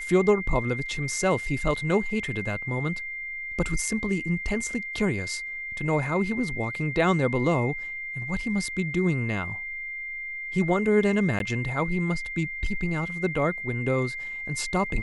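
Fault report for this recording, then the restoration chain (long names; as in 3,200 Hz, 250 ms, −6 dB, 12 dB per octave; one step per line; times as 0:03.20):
whistle 2,100 Hz −32 dBFS
0:11.39–0:11.40: drop-out 12 ms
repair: notch filter 2,100 Hz, Q 30
repair the gap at 0:11.39, 12 ms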